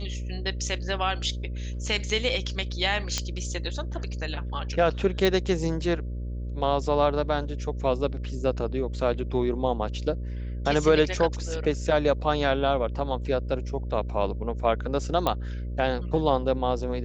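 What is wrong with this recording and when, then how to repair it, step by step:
mains buzz 60 Hz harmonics 10 −32 dBFS
0:03.18: click −11 dBFS
0:05.25: click
0:15.27: click −11 dBFS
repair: click removal
hum removal 60 Hz, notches 10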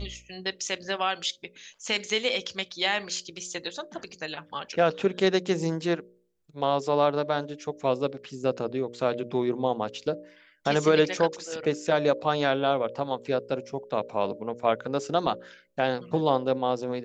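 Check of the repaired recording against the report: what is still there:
none of them is left

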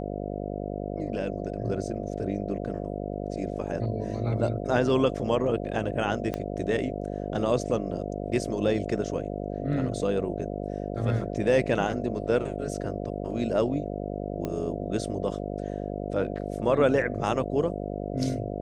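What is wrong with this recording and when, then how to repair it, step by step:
mains buzz 50 Hz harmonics 14 −33 dBFS
0:06.34: click −17 dBFS
0:14.45: click −18 dBFS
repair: click removal
hum removal 50 Hz, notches 14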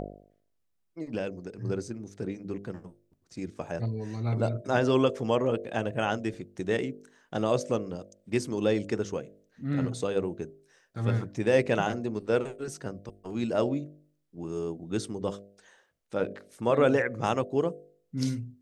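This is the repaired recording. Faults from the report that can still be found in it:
0:06.34: click

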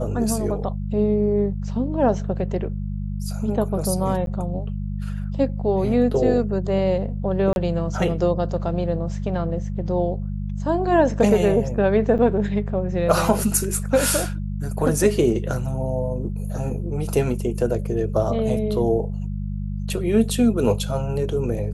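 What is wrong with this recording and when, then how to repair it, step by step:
mains hum 50 Hz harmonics 4 −27 dBFS
0:04.26–0:04.27: drop-out 12 ms
0:07.53–0:07.56: drop-out 31 ms
0:12.18–0:12.19: drop-out 7.8 ms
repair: hum removal 50 Hz, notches 4
repair the gap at 0:04.26, 12 ms
repair the gap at 0:07.53, 31 ms
repair the gap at 0:12.18, 7.8 ms

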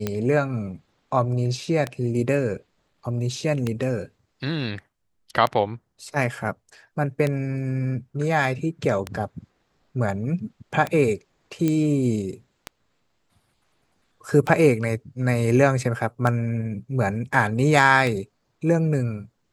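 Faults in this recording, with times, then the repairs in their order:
scratch tick 33 1/3 rpm −11 dBFS
0:11.68: click −11 dBFS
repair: click removal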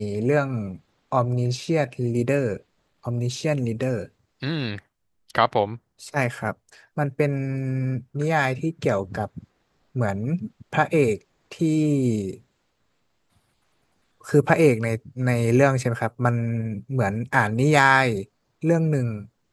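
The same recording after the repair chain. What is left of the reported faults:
none of them is left

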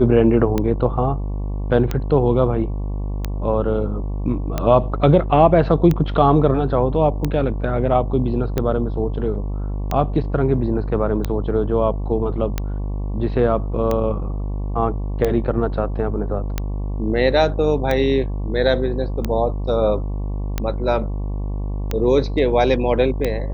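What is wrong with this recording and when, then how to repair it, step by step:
mains buzz 50 Hz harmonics 23 −24 dBFS
scratch tick 45 rpm −8 dBFS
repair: click removal
hum removal 50 Hz, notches 23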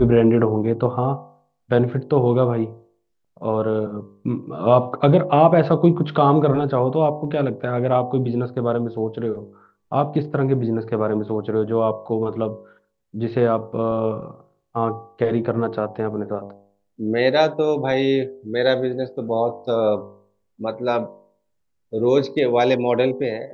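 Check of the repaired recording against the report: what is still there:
none of them is left

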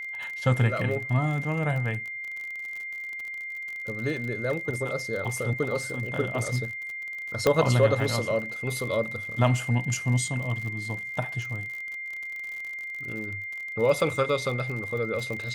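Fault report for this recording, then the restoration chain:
surface crackle 50 per second −33 dBFS
whistle 2,100 Hz −33 dBFS
0:07.47: click −8 dBFS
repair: click removal
notch filter 2,100 Hz, Q 30

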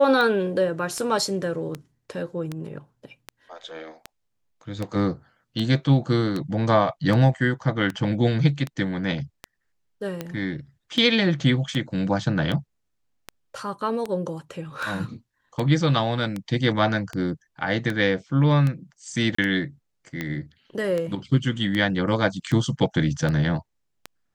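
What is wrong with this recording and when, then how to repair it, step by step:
scratch tick 78 rpm −15 dBFS
0:19.35–0:19.38: drop-out 34 ms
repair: click removal
repair the gap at 0:19.35, 34 ms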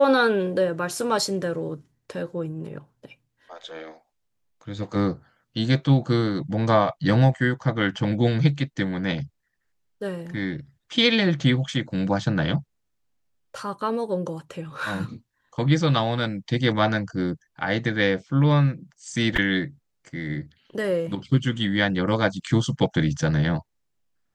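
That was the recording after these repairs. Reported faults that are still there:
none of them is left

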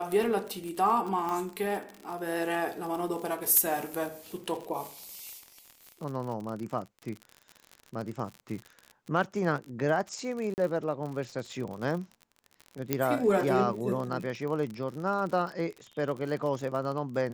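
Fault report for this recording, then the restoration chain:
surface crackle 52 per second −35 dBFS
0:01.29: click −21 dBFS
0:10.54–0:10.58: drop-out 39 ms
0:12.93: click −11 dBFS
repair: click removal
repair the gap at 0:10.54, 39 ms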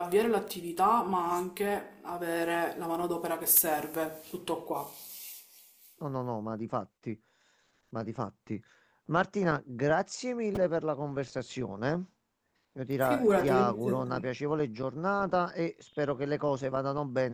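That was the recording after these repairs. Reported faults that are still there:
0:01.29: click
0:12.93: click

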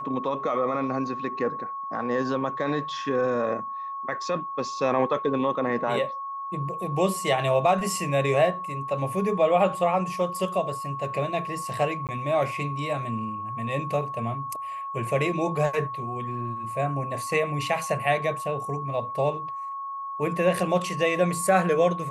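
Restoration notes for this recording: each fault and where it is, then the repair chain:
whistle 1,100 Hz −31 dBFS
0:12.07–0:12.09: drop-out 18 ms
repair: notch filter 1,100 Hz, Q 30
repair the gap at 0:12.07, 18 ms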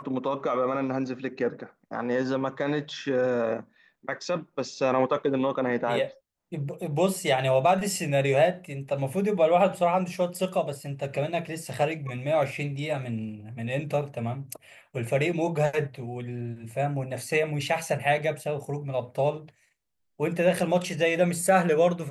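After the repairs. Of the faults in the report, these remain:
none of them is left

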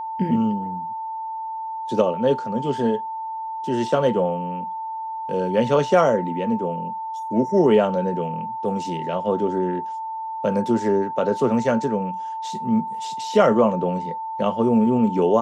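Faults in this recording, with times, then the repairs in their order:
whistle 890 Hz −27 dBFS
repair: notch filter 890 Hz, Q 30

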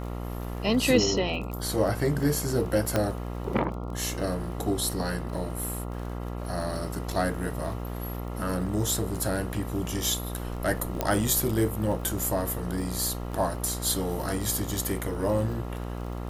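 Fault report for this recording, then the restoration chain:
mains buzz 60 Hz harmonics 23 −34 dBFS
surface crackle 27 per second −35 dBFS
0:02.96: click −10 dBFS
0:11.01: click −11 dBFS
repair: click removal
hum removal 60 Hz, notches 23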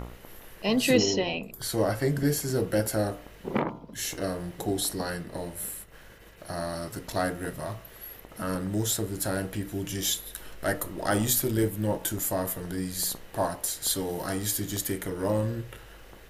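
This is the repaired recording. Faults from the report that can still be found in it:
none of them is left

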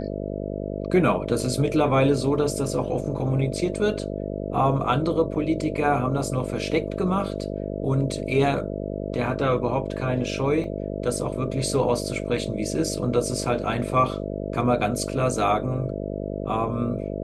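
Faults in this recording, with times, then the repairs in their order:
mains buzz 50 Hz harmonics 13 −30 dBFS
0:10.64: drop-out 2.1 ms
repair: hum removal 50 Hz, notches 13
repair the gap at 0:10.64, 2.1 ms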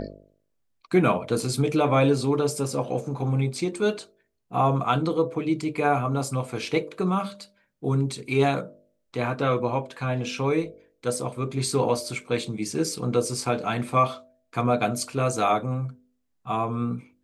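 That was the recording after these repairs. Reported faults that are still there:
none of them is left

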